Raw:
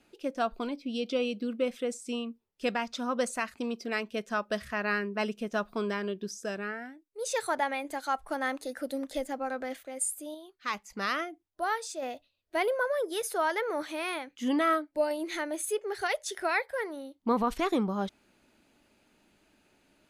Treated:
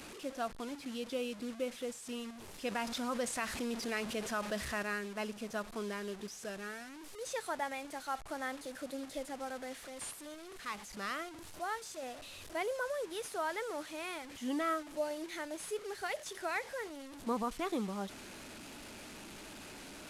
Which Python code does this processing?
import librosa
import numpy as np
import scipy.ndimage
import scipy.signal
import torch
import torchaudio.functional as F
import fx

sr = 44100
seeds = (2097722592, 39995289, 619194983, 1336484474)

y = fx.delta_mod(x, sr, bps=64000, step_db=-35.5)
y = fx.env_flatten(y, sr, amount_pct=50, at=(2.71, 4.83))
y = F.gain(torch.from_numpy(y), -8.0).numpy()